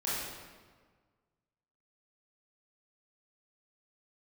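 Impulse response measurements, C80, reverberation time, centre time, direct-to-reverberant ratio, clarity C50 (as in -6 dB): 0.5 dB, 1.5 s, 0.106 s, -9.5 dB, -2.5 dB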